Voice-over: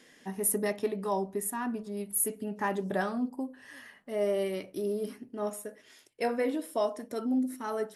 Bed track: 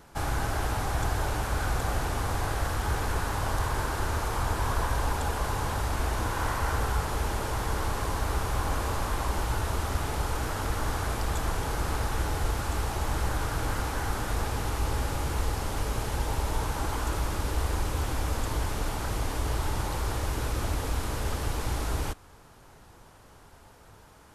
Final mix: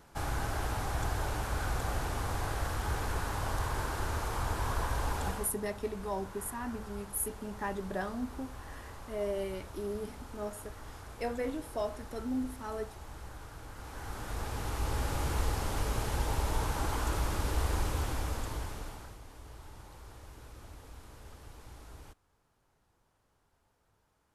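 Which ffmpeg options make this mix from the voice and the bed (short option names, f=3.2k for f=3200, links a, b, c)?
-filter_complex "[0:a]adelay=5000,volume=-5.5dB[a];[1:a]volume=10dB,afade=t=out:st=5.27:d=0.25:silence=0.237137,afade=t=in:st=13.74:d=1.5:silence=0.177828,afade=t=out:st=17.83:d=1.35:silence=0.125893[b];[a][b]amix=inputs=2:normalize=0"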